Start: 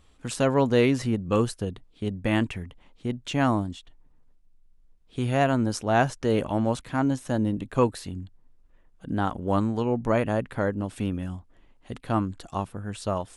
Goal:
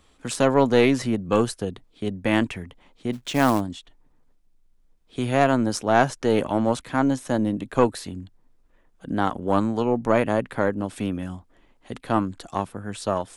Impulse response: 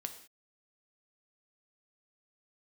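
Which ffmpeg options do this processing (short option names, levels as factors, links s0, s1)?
-filter_complex "[0:a]bandreject=f=2800:w=27,acrossover=split=180[s0][s1];[s1]acontrast=79[s2];[s0][s2]amix=inputs=2:normalize=0,asplit=3[s3][s4][s5];[s3]afade=t=out:st=3.12:d=0.02[s6];[s4]acrusher=bits=4:mode=log:mix=0:aa=0.000001,afade=t=in:st=3.12:d=0.02,afade=t=out:st=3.59:d=0.02[s7];[s5]afade=t=in:st=3.59:d=0.02[s8];[s6][s7][s8]amix=inputs=3:normalize=0,aeval=exprs='0.75*(cos(1*acos(clip(val(0)/0.75,-1,1)))-cos(1*PI/2))+0.15*(cos(2*acos(clip(val(0)/0.75,-1,1)))-cos(2*PI/2))':c=same,volume=0.708"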